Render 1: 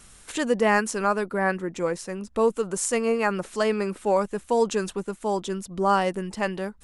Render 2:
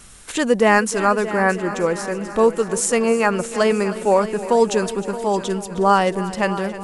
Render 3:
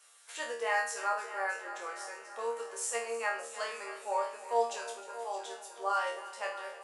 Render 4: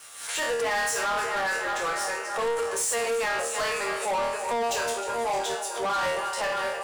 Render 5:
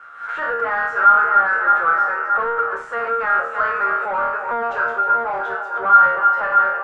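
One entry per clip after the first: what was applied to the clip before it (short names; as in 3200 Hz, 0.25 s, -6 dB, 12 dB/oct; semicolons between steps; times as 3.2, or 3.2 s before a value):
multi-head echo 0.311 s, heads first and second, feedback 56%, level -16 dB; gain +6 dB
HPF 560 Hz 24 dB/oct; resonator bank D#2 fifth, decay 0.44 s; gain -1.5 dB
limiter -27.5 dBFS, peak gain reduction 10.5 dB; sample leveller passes 3; backwards sustainer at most 76 dB/s; gain +5 dB
synth low-pass 1400 Hz, resonance Q 11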